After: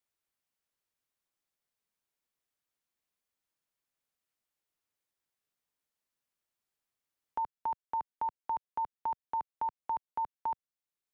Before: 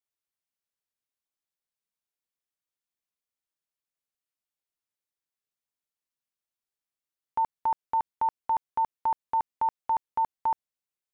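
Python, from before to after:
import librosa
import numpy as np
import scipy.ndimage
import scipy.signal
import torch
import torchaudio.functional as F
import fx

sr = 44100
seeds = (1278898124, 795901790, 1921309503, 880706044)

y = fx.band_squash(x, sr, depth_pct=40)
y = y * 10.0 ** (-7.5 / 20.0)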